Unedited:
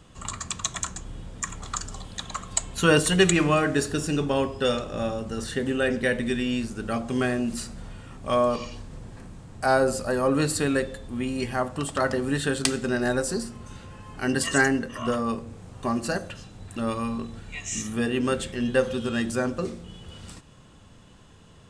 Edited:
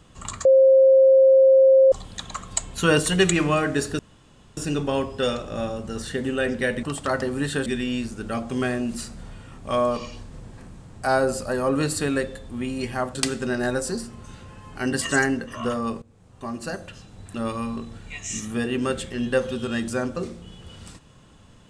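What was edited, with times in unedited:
0:00.45–0:01.92: beep over 532 Hz −10.5 dBFS
0:03.99: splice in room tone 0.58 s
0:11.74–0:12.57: move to 0:06.25
0:15.44–0:17.07: fade in equal-power, from −17.5 dB

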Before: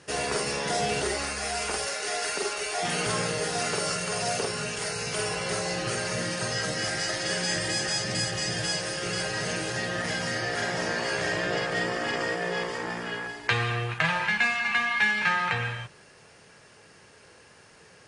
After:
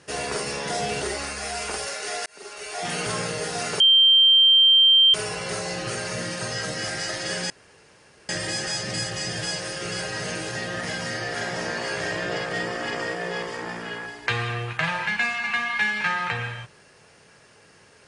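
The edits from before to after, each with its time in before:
0:02.26–0:02.90: fade in
0:03.80–0:05.14: beep over 3,150 Hz −12 dBFS
0:07.50: splice in room tone 0.79 s

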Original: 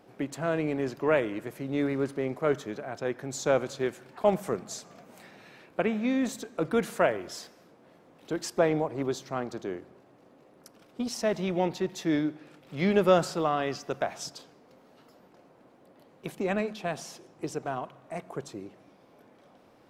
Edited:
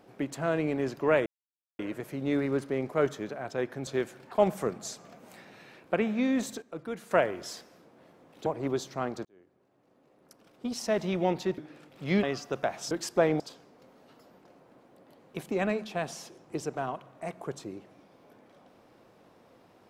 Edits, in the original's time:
0:01.26: splice in silence 0.53 s
0:03.34–0:03.73: remove
0:06.48–0:06.97: clip gain −10.5 dB
0:08.32–0:08.81: move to 0:14.29
0:09.60–0:11.38: fade in
0:11.93–0:12.29: remove
0:12.94–0:13.61: remove

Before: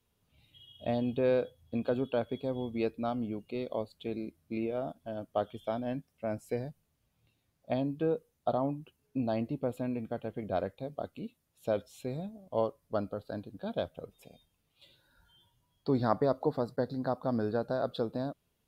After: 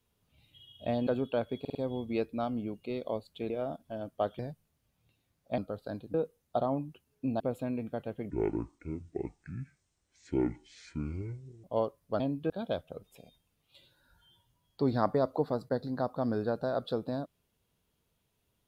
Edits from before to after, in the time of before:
0:01.07–0:01.87: remove
0:02.40: stutter 0.05 s, 4 plays
0:04.15–0:04.66: remove
0:05.55–0:06.57: remove
0:07.76–0:08.06: swap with 0:13.01–0:13.57
0:09.32–0:09.58: remove
0:10.48–0:12.45: play speed 59%

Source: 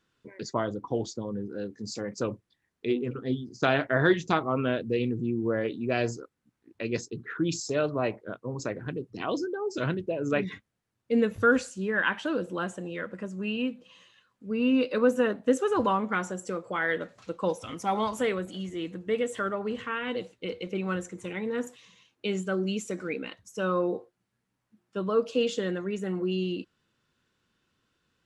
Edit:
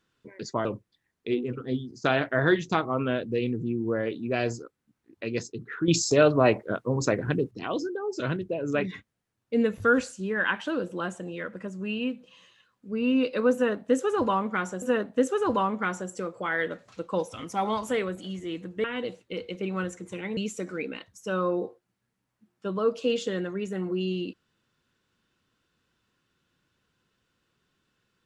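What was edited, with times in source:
0:00.65–0:02.23: remove
0:07.46–0:09.09: clip gain +8 dB
0:15.12–0:16.40: repeat, 2 plays
0:19.14–0:19.96: remove
0:21.49–0:22.68: remove

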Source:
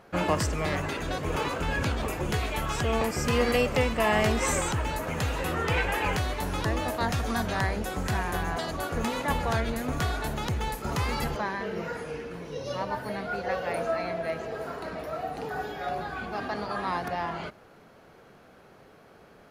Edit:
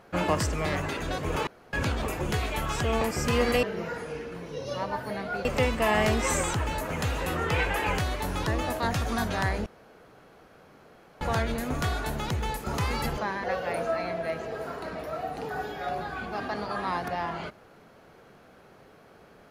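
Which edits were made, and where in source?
0:01.47–0:01.73: fill with room tone
0:07.84–0:09.39: fill with room tone
0:11.62–0:13.44: move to 0:03.63

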